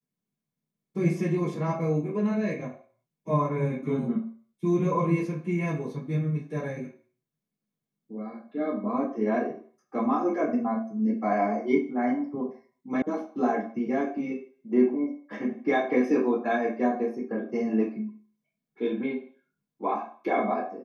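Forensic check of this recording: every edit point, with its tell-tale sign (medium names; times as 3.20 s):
13.02 s: sound stops dead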